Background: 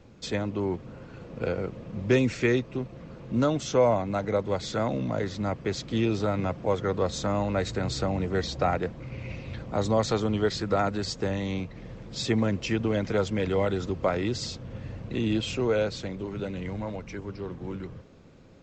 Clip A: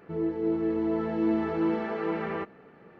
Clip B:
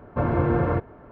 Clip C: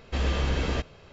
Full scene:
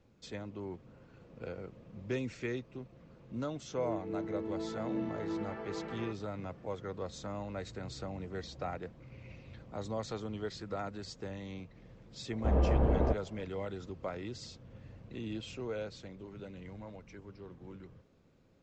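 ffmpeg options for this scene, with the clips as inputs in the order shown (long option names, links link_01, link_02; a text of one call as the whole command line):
ffmpeg -i bed.wav -i cue0.wav -i cue1.wav -i cue2.wav -filter_complex "[0:a]volume=-13.5dB[link_01];[3:a]lowpass=frequency=730:width_type=q:width=1.7[link_02];[1:a]atrim=end=2.99,asetpts=PTS-STARTPTS,volume=-11dB,afade=type=in:duration=0.004:curve=hsin,afade=type=out:start_time=2.986:duration=0.004:curve=hsin,adelay=3680[link_03];[link_02]atrim=end=1.12,asetpts=PTS-STARTPTS,volume=-1.5dB,afade=type=in:duration=0.004:curve=hsin,afade=type=out:start_time=1.116:duration=0.004:curve=hsin,adelay=12320[link_04];[link_01][link_03][link_04]amix=inputs=3:normalize=0" out.wav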